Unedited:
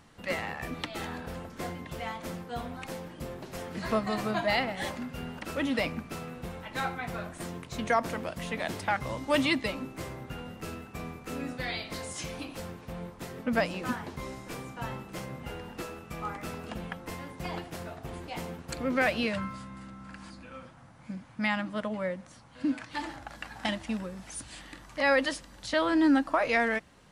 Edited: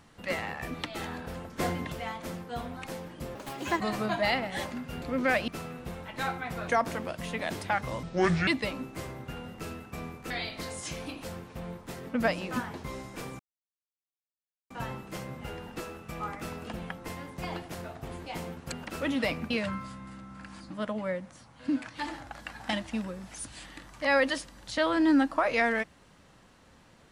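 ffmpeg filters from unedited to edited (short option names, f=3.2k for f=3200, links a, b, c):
-filter_complex "[0:a]asplit=15[a][b][c][d][e][f][g][h][i][j][k][l][m][n][o];[a]atrim=end=1.582[p];[b]atrim=start=1.578:end=1.922,asetpts=PTS-STARTPTS,volume=6.5dB[q];[c]atrim=start=1.918:end=3.354[r];[d]atrim=start=3.35:end=4.05,asetpts=PTS-STARTPTS,asetrate=68796,aresample=44100,atrim=end_sample=19788,asetpts=PTS-STARTPTS[s];[e]atrim=start=4.046:end=5.272[t];[f]atrim=start=18.738:end=19.202[u];[g]atrim=start=6.048:end=7.252[v];[h]atrim=start=7.858:end=9.214[w];[i]atrim=start=9.21:end=9.49,asetpts=PTS-STARTPTS,asetrate=27783,aresample=44100[x];[j]atrim=start=9.486:end=11.322[y];[k]atrim=start=11.628:end=14.72,asetpts=PTS-STARTPTS,afade=t=out:st=3.088:d=0.004:c=hsin,apad=pad_dur=1.31[z];[l]atrim=start=14.72:end=18.742,asetpts=PTS-STARTPTS,afade=t=in:d=0.004:c=hsin[aa];[m]atrim=start=5.268:end=6.052[ab];[n]atrim=start=19.198:end=20.402[ac];[o]atrim=start=21.658[ad];[p][q]acrossfade=d=0.004:c1=hsin:c2=hsin[ae];[ae][r]acrossfade=d=0.004:c1=hsin:c2=hsin[af];[af][s]acrossfade=d=0.004:c1=hsin:c2=hsin[ag];[ag][t]acrossfade=d=0.004:c1=hsin:c2=hsin[ah];[ah][u]acrossfade=d=0.004:c1=hsin:c2=hsin[ai];[ai][v]acrossfade=d=0.004:c1=hsin:c2=hsin[aj];[aj][w]acrossfade=d=0.004:c1=hsin:c2=hsin[ak];[ak][x]acrossfade=d=0.004:c1=hsin:c2=hsin[al];[al][y]acrossfade=d=0.004:c1=hsin:c2=hsin[am];[z][aa]concat=n=2:v=0:a=1[an];[am][an]acrossfade=d=0.004:c1=hsin:c2=hsin[ao];[ao][ab]acrossfade=d=0.004:c1=hsin:c2=hsin[ap];[ap][ac]acrossfade=d=0.004:c1=hsin:c2=hsin[aq];[aq][ad]acrossfade=d=0.004:c1=hsin:c2=hsin"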